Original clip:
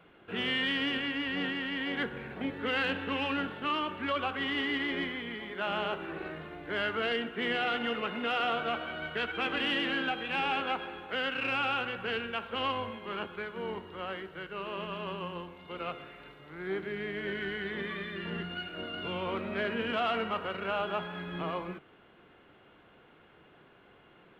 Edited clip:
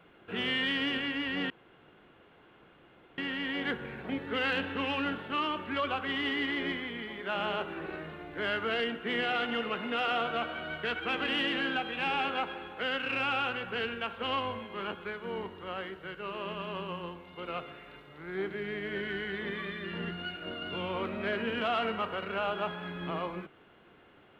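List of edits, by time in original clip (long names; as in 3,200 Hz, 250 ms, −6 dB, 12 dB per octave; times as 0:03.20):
0:01.50: splice in room tone 1.68 s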